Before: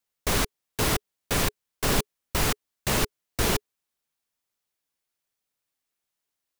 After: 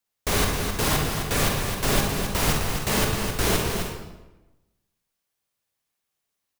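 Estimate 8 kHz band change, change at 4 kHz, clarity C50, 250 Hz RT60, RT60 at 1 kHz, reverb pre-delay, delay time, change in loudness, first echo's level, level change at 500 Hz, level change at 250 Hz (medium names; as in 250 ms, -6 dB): +3.0 dB, +3.0 dB, 0.5 dB, 1.2 s, 1.0 s, 36 ms, 261 ms, +3.0 dB, -7.0 dB, +4.0 dB, +4.5 dB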